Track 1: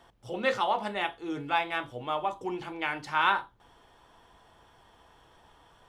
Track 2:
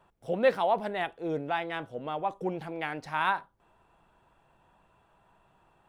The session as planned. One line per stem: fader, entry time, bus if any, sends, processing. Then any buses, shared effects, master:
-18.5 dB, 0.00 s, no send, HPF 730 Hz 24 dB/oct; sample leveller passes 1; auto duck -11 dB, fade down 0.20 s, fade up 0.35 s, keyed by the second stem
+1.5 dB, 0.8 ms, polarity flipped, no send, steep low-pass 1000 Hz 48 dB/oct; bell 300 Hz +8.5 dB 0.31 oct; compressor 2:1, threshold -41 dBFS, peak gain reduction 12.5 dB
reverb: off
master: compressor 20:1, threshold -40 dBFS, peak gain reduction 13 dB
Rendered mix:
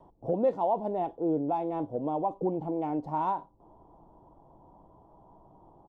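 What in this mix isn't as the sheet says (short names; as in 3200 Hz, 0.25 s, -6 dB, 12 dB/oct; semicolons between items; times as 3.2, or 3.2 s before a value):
stem 2 +1.5 dB -> +9.0 dB; master: missing compressor 20:1, threshold -40 dBFS, peak gain reduction 13 dB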